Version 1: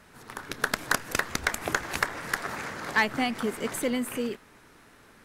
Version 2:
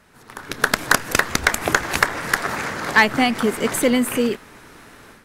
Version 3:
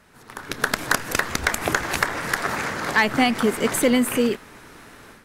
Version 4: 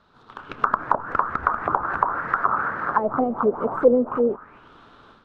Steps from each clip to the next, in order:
level rider gain up to 11 dB
loudness maximiser +6.5 dB; trim -7 dB
resonant high shelf 1.6 kHz -7 dB, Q 3; short-mantissa float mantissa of 2-bit; touch-sensitive low-pass 510–3900 Hz down, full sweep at -14.5 dBFS; trim -6 dB

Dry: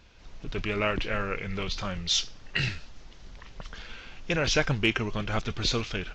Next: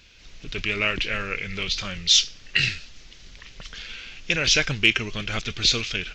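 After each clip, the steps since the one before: FFT filter 450 Hz 0 dB, 910 Hz -5 dB, 2.4 kHz +10 dB; trim -1 dB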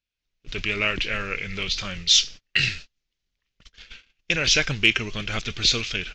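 gate -35 dBFS, range -35 dB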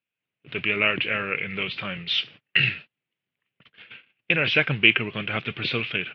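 elliptic band-pass 120–2800 Hz, stop band 40 dB; trim +2.5 dB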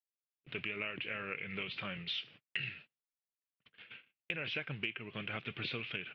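gate with hold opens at -40 dBFS; compression 6:1, threshold -28 dBFS, peak gain reduction 16.5 dB; trim -8 dB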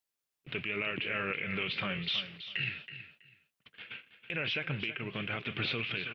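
peak limiter -30.5 dBFS, peak gain reduction 10 dB; feedback delay 325 ms, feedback 19%, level -12 dB; trim +7.5 dB

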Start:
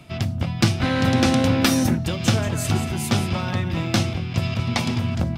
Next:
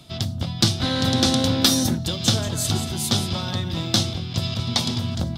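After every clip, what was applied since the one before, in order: resonant high shelf 3 kHz +6 dB, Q 3; trim -2.5 dB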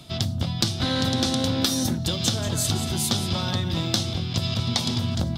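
compression 6:1, threshold -22 dBFS, peak gain reduction 10 dB; trim +2 dB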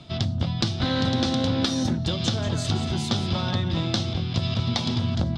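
distance through air 130 m; trim +1 dB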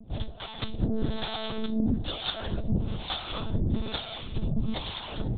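harmonic tremolo 1.1 Hz, depth 100%, crossover 560 Hz; monotone LPC vocoder at 8 kHz 220 Hz

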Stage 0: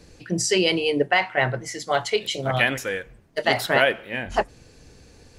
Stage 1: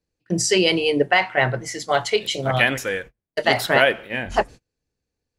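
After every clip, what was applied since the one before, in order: gate -37 dBFS, range -34 dB; trim +2.5 dB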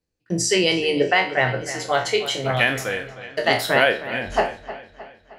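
spectral sustain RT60 0.33 s; feedback echo behind a low-pass 310 ms, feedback 50%, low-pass 4 kHz, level -14 dB; trim -2 dB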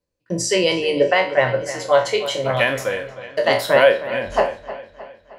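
small resonant body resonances 560/1000 Hz, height 13 dB, ringing for 50 ms; trim -1 dB

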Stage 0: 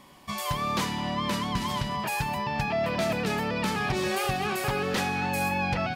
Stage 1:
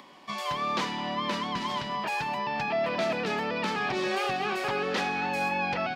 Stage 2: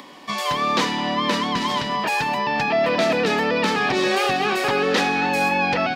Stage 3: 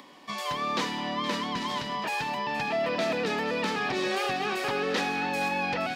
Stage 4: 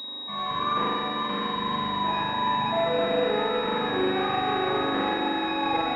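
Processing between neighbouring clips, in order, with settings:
three-band isolator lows -19 dB, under 200 Hz, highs -18 dB, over 6 kHz; upward compressor, threshold -47 dBFS
treble shelf 4.9 kHz +5.5 dB; small resonant body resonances 280/470/1800/3800 Hz, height 6 dB; trim +7.5 dB
feedback echo behind a high-pass 469 ms, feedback 68%, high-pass 2 kHz, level -11.5 dB; trim -8.5 dB
spring tank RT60 2.2 s, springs 40 ms, chirp 55 ms, DRR -7.5 dB; class-D stage that switches slowly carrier 3.8 kHz; trim -2.5 dB

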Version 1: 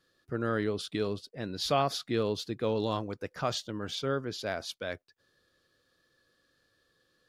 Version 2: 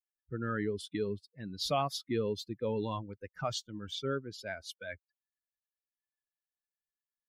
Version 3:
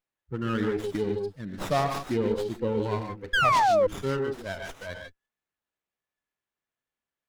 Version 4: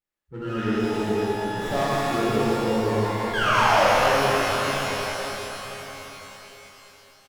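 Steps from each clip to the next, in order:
expander on every frequency bin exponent 2; in parallel at -1 dB: peak limiter -27 dBFS, peak gain reduction 9.5 dB; on the sum: trim -4 dB
gated-style reverb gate 170 ms rising, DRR 4 dB; painted sound fall, 3.33–3.87 s, 490–1700 Hz -25 dBFS; sliding maximum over 9 samples; trim +5 dB
delay 1131 ms -18 dB; pitch-shifted reverb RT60 3.9 s, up +12 st, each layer -8 dB, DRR -10.5 dB; trim -7 dB

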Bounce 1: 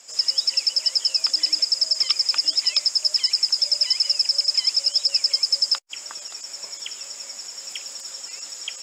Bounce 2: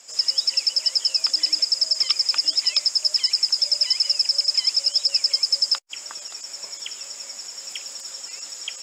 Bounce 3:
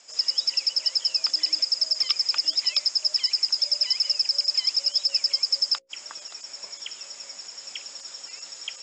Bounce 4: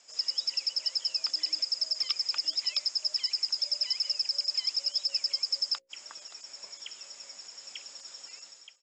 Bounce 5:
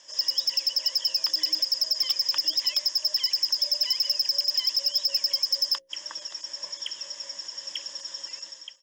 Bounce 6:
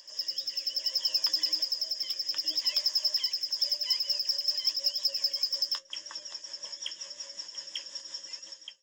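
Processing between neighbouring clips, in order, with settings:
no audible change
low-pass 6.6 kHz 24 dB/octave; hum notches 60/120/180/240/300/360/420/480/540 Hz; trim -2.5 dB
fade out at the end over 0.51 s; trim -6.5 dB
rippled EQ curve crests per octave 1.2, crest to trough 11 dB; saturation -23 dBFS, distortion -13 dB; trim +5.5 dB
rotary cabinet horn 0.6 Hz, later 5.5 Hz, at 3.18 s; flange 0.82 Hz, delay 8.7 ms, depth 5.8 ms, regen +53%; pre-echo 208 ms -16 dB; trim +2 dB

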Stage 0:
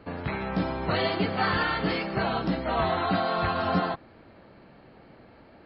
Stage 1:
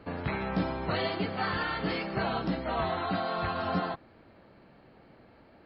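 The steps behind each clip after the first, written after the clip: gain riding within 3 dB 0.5 s; trim -4 dB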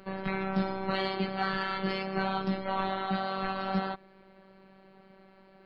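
in parallel at -10 dB: saturation -26 dBFS, distortion -16 dB; on the sum: robot voice 192 Hz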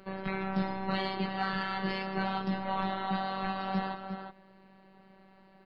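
echo from a far wall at 61 m, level -7 dB; trim -2 dB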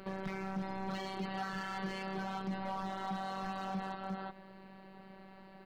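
compression 4:1, threshold -39 dBFS, peak gain reduction 12 dB; hard clipper -33 dBFS, distortion -17 dB; trim +4 dB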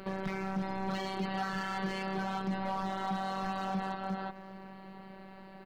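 delay 777 ms -22.5 dB; trim +4 dB

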